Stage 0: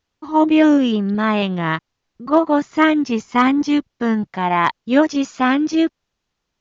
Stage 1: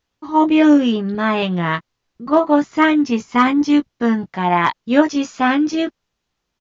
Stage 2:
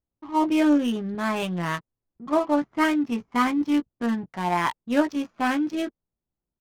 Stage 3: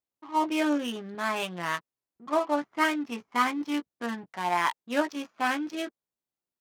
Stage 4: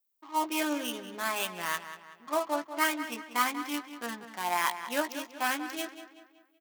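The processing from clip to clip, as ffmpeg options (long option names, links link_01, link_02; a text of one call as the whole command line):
ffmpeg -i in.wav -filter_complex "[0:a]asplit=2[link_01][link_02];[link_02]adelay=17,volume=-7dB[link_03];[link_01][link_03]amix=inputs=2:normalize=0" out.wav
ffmpeg -i in.wav -af "bandreject=frequency=450:width=12,adynamicsmooth=sensitivity=4.5:basefreq=640,volume=-8dB" out.wav
ffmpeg -i in.wav -af "highpass=frequency=680:poles=1" out.wav
ffmpeg -i in.wav -filter_complex "[0:a]aemphasis=mode=production:type=bsi,asplit=2[link_01][link_02];[link_02]adelay=189,lowpass=frequency=4600:poles=1,volume=-11dB,asplit=2[link_03][link_04];[link_04]adelay=189,lowpass=frequency=4600:poles=1,volume=0.45,asplit=2[link_05][link_06];[link_06]adelay=189,lowpass=frequency=4600:poles=1,volume=0.45,asplit=2[link_07][link_08];[link_08]adelay=189,lowpass=frequency=4600:poles=1,volume=0.45,asplit=2[link_09][link_10];[link_10]adelay=189,lowpass=frequency=4600:poles=1,volume=0.45[link_11];[link_01][link_03][link_05][link_07][link_09][link_11]amix=inputs=6:normalize=0,volume=-3dB" out.wav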